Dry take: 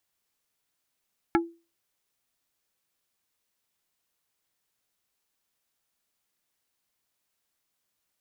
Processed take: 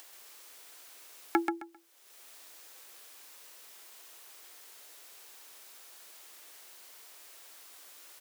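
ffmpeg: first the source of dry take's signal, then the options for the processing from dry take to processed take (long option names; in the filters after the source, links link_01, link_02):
-f lavfi -i "aevalsrc='0.141*pow(10,-3*t/0.31)*sin(2*PI*336*t)+0.112*pow(10,-3*t/0.103)*sin(2*PI*840*t)+0.0891*pow(10,-3*t/0.059)*sin(2*PI*1344*t)+0.0708*pow(10,-3*t/0.045)*sin(2*PI*1680*t)+0.0562*pow(10,-3*t/0.033)*sin(2*PI*2184*t)':duration=0.45:sample_rate=44100"
-filter_complex "[0:a]highpass=frequency=330:width=0.5412,highpass=frequency=330:width=1.3066,acompressor=mode=upward:threshold=-33dB:ratio=2.5,asplit=2[link_01][link_02];[link_02]aecho=0:1:132|264|396:0.562|0.124|0.0272[link_03];[link_01][link_03]amix=inputs=2:normalize=0"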